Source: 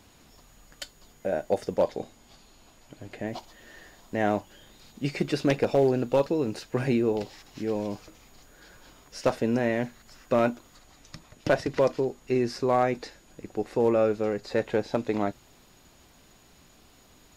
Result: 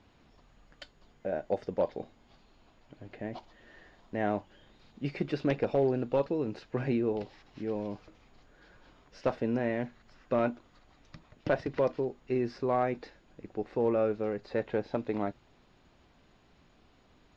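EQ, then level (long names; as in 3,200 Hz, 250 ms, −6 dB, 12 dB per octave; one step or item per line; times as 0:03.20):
high-frequency loss of the air 200 metres
−4.5 dB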